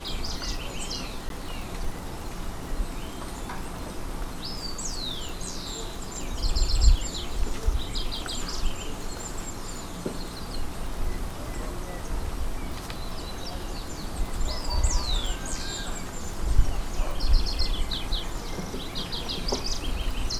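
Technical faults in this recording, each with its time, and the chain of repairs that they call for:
crackle 26 per s -32 dBFS
1.29–1.30 s: dropout 12 ms
5.29 s: pop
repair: de-click; interpolate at 1.29 s, 12 ms

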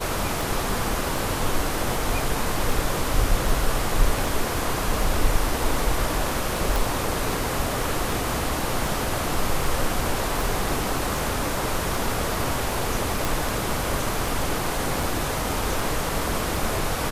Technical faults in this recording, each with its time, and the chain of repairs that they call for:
tick 78 rpm
6.76 s: pop
13.25 s: pop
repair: de-click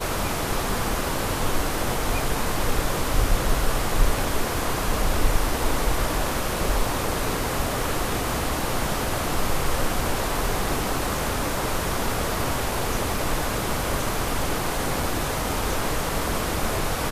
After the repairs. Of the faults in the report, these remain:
nothing left

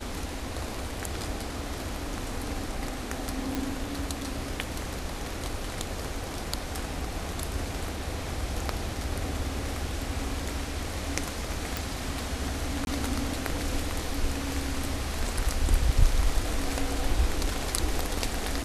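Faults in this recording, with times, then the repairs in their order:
3.55 s: pop
11.77 s: pop
12.85–12.87 s: dropout 21 ms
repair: de-click; interpolate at 12.85 s, 21 ms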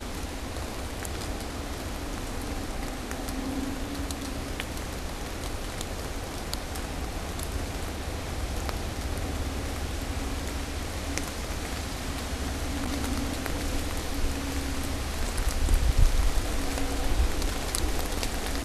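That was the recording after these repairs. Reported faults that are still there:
nothing left

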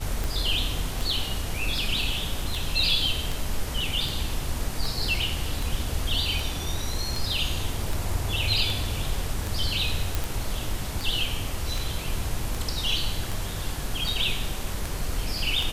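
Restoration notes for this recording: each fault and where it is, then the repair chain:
tick 78 rpm
10.15 s: pop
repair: de-click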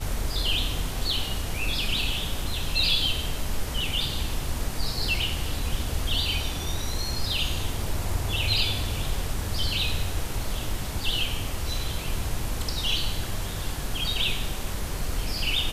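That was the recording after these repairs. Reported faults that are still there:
nothing left

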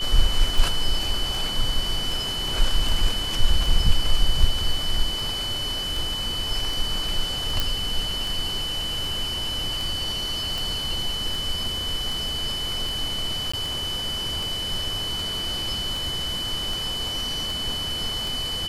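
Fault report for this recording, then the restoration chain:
tick 78 rpm
whine 3 kHz -27 dBFS
7.60 s: pop
13.52–13.54 s: dropout 15 ms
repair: de-click; band-stop 3 kHz, Q 30; interpolate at 13.52 s, 15 ms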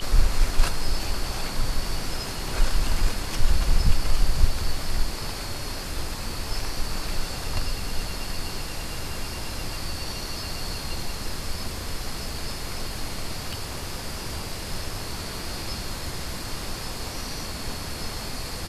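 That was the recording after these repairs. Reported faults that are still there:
nothing left

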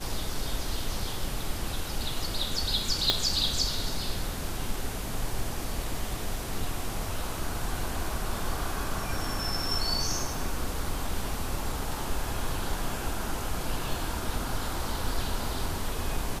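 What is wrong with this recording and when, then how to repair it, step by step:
3.10 s: pop -7 dBFS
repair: de-click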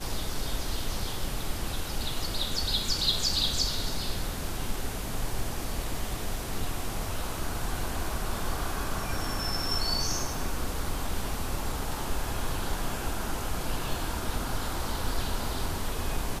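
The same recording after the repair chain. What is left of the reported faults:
3.10 s: pop

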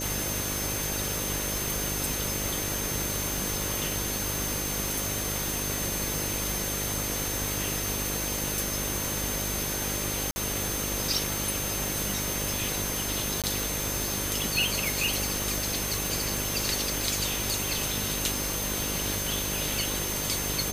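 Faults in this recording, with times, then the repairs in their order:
buzz 50 Hz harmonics 12 -36 dBFS
whine 6.3 kHz -35 dBFS
10.31–10.36 s: dropout 50 ms
13.42–13.44 s: dropout 17 ms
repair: de-hum 50 Hz, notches 12; band-stop 6.3 kHz, Q 30; interpolate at 10.31 s, 50 ms; interpolate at 13.42 s, 17 ms

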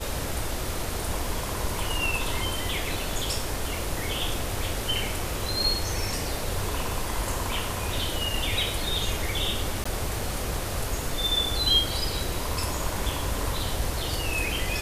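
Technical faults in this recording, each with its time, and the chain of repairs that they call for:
9.84–9.86 s: dropout 15 ms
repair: interpolate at 9.84 s, 15 ms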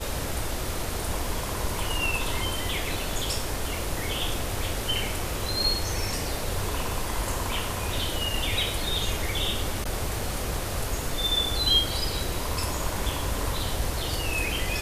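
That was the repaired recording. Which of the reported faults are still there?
nothing left

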